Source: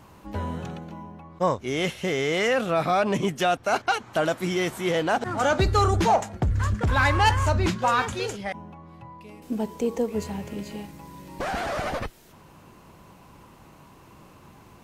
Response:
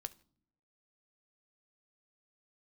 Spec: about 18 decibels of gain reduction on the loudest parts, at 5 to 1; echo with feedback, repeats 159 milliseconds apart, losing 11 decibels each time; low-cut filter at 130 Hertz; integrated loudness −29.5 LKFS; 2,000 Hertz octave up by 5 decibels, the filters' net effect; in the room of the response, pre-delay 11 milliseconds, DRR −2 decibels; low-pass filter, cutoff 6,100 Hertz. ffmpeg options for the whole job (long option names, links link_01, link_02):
-filter_complex "[0:a]highpass=130,lowpass=6100,equalizer=frequency=2000:width_type=o:gain=6.5,acompressor=threshold=-36dB:ratio=5,aecho=1:1:159|318|477:0.282|0.0789|0.0221,asplit=2[link_01][link_02];[1:a]atrim=start_sample=2205,adelay=11[link_03];[link_02][link_03]afir=irnorm=-1:irlink=0,volume=5.5dB[link_04];[link_01][link_04]amix=inputs=2:normalize=0,volume=4.5dB"